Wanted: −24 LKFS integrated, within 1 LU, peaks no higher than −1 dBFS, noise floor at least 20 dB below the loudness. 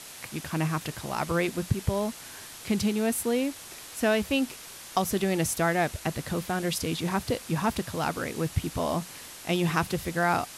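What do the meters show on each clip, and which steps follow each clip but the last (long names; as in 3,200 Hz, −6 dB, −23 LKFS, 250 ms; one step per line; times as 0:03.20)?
background noise floor −44 dBFS; target noise floor −49 dBFS; integrated loudness −28.5 LKFS; sample peak −10.0 dBFS; target loudness −24.0 LKFS
→ noise reduction from a noise print 6 dB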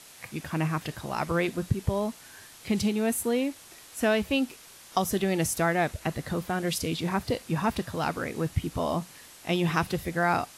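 background noise floor −50 dBFS; integrated loudness −29.0 LKFS; sample peak −10.5 dBFS; target loudness −24.0 LKFS
→ level +5 dB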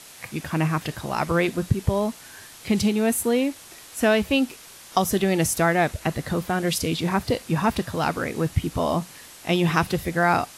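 integrated loudness −24.0 LKFS; sample peak −5.5 dBFS; background noise floor −45 dBFS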